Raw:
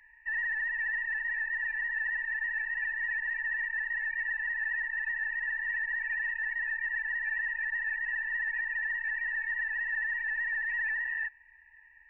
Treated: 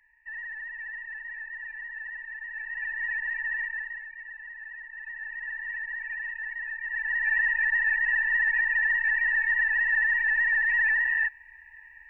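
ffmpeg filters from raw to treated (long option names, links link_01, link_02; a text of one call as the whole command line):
ffmpeg -i in.wav -af "volume=19.5dB,afade=type=in:start_time=2.47:duration=0.58:silence=0.398107,afade=type=out:start_time=3.6:duration=0.47:silence=0.266073,afade=type=in:start_time=4.88:duration=0.66:silence=0.421697,afade=type=in:start_time=6.83:duration=0.53:silence=0.316228" out.wav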